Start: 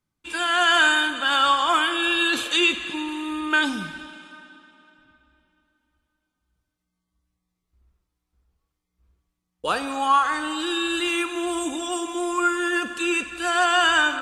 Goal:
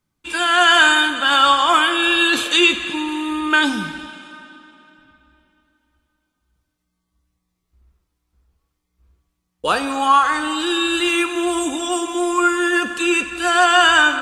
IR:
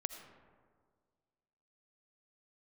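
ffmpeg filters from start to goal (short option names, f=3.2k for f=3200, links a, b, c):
-filter_complex "[0:a]asplit=2[a][b];[1:a]atrim=start_sample=2205,asetrate=31311,aresample=44100,adelay=14[c];[b][c]afir=irnorm=-1:irlink=0,volume=-14.5dB[d];[a][d]amix=inputs=2:normalize=0,volume=5.5dB"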